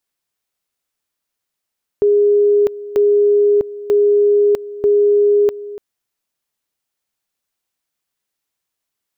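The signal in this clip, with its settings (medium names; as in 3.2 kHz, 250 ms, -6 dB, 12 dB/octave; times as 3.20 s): two-level tone 411 Hz -9 dBFS, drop 17 dB, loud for 0.65 s, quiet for 0.29 s, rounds 4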